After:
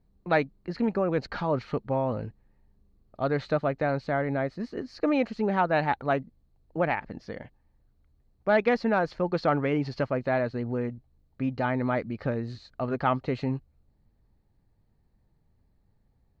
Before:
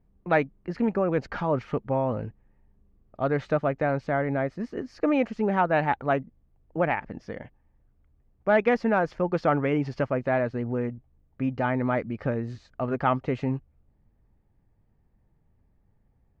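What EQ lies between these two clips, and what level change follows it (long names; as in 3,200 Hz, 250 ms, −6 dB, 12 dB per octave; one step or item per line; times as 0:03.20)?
parametric band 4,200 Hz +13 dB 0.33 octaves
−1.5 dB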